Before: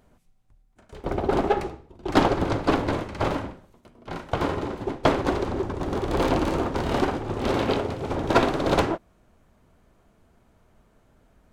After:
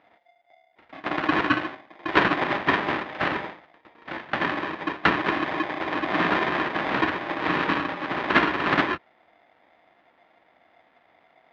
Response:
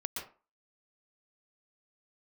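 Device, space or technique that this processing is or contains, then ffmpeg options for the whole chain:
ring modulator pedal into a guitar cabinet: -af "aeval=exprs='val(0)*sgn(sin(2*PI*700*n/s))':channel_layout=same,highpass=110,equalizer=frequency=110:width_type=q:width=4:gain=-7,equalizer=frequency=310:width_type=q:width=4:gain=5,equalizer=frequency=440:width_type=q:width=4:gain=-4,equalizer=frequency=1800:width_type=q:width=4:gain=6,lowpass=frequency=3400:width=0.5412,lowpass=frequency=3400:width=1.3066,volume=-1dB"

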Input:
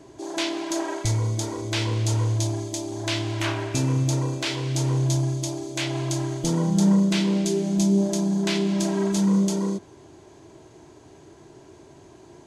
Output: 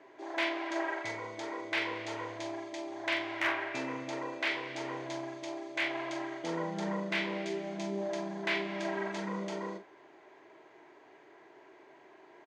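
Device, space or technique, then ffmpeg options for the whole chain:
megaphone: -filter_complex "[0:a]highpass=500,lowpass=2500,equalizer=frequency=2000:width_type=o:width=0.59:gain=9,asoftclip=type=hard:threshold=-19dB,asplit=2[link_01][link_02];[link_02]adelay=42,volume=-8.5dB[link_03];[link_01][link_03]amix=inputs=2:normalize=0,volume=-4dB"

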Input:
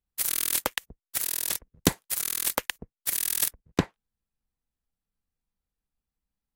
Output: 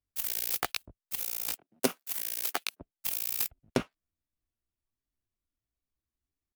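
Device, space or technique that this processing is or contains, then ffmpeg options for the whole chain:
chipmunk voice: -filter_complex "[0:a]asetrate=62367,aresample=44100,atempo=0.707107,asettb=1/sr,asplit=3[link_01][link_02][link_03];[link_01]atrim=end=1.534[link_04];[link_02]atrim=start=1.53:end=2.81,asetpts=PTS-STARTPTS,afade=type=in:duration=0.004:curve=qsin,afade=type=out:start_time=1.276:duration=0.004:curve=qsin,highpass=frequency=180:width=0.5412,highpass=frequency=180:width=1.3066[link_05];[link_03]atrim=start=2.806[link_06];[link_04][link_05]acrossfade=duration=0.004:curve1=hsin:curve2=qsin[link_07];[link_07][link_06]acrossfade=duration=0.004:curve1=qsin:curve2=hsin,volume=-4dB"

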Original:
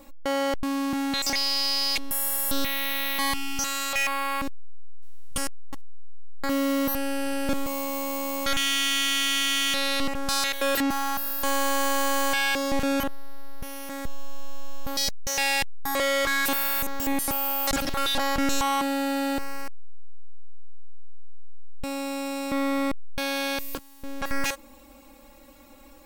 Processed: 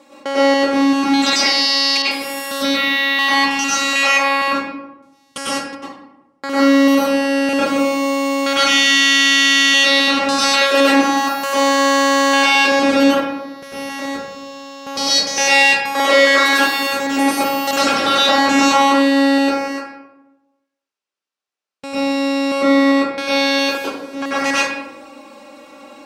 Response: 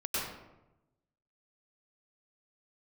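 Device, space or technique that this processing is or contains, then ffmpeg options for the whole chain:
supermarket ceiling speaker: -filter_complex "[0:a]highpass=290,lowpass=6900[link_01];[1:a]atrim=start_sample=2205[link_02];[link_01][link_02]afir=irnorm=-1:irlink=0,asettb=1/sr,asplit=3[link_03][link_04][link_05];[link_03]atrim=end=2.024[link_06];[link_04]atrim=start=2.02:end=3.51,asetpts=PTS-STARTPTS,afade=type=in:duration=0.004:curve=qsin,afade=type=out:start_time=1.486:duration=0.004:curve=qsin,adynamicequalizer=threshold=0.0126:dfrequency=5100:dqfactor=0.7:tfrequency=5100:tqfactor=0.7:attack=5:release=100:ratio=0.375:range=3.5:mode=cutabove:tftype=highshelf[link_07];[link_05]atrim=start=3.506[link_08];[link_06][link_07]acrossfade=duration=0.004:curve1=hsin:curve2=qsin[link_09];[link_09][link_08]acrossfade=duration=0.004:curve1=qsin:curve2=hsin,volume=7.5dB"

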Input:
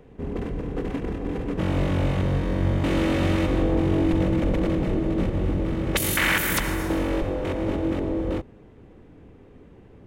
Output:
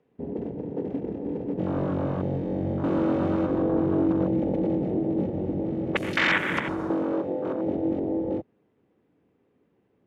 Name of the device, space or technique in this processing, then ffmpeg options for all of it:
over-cleaned archive recording: -filter_complex "[0:a]asettb=1/sr,asplit=3[link_01][link_02][link_03];[link_01]atrim=end=6.914[link_04];[link_02]atrim=start=6.91:end=7.67,asetpts=PTS-STARTPTS,afade=type=in:duration=0.004:curve=qsin,afade=type=out:start_time=0.756:duration=0.004:curve=qsin,highpass=130[link_05];[link_03]atrim=start=7.666[link_06];[link_04][link_05]acrossfade=duration=0.004:curve1=hsin:curve2=qsin[link_07];[link_07][link_06]acrossfade=duration=0.004:curve1=qsin:curve2=hsin,highpass=160,lowpass=5800,afwtdn=0.0355"

